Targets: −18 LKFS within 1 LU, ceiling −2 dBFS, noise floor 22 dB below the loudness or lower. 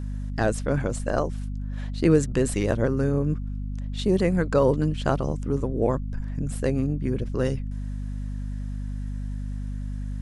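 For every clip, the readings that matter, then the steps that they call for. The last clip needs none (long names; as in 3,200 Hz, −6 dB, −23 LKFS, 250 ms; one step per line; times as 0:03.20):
mains hum 50 Hz; hum harmonics up to 250 Hz; level of the hum −28 dBFS; integrated loudness −26.5 LKFS; sample peak −7.0 dBFS; target loudness −18.0 LKFS
→ mains-hum notches 50/100/150/200/250 Hz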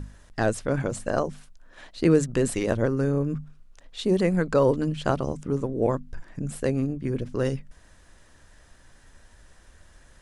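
mains hum none found; integrated loudness −26.0 LKFS; sample peak −8.0 dBFS; target loudness −18.0 LKFS
→ level +8 dB
brickwall limiter −2 dBFS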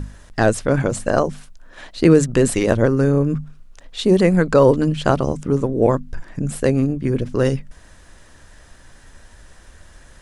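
integrated loudness −18.0 LKFS; sample peak −2.0 dBFS; background noise floor −47 dBFS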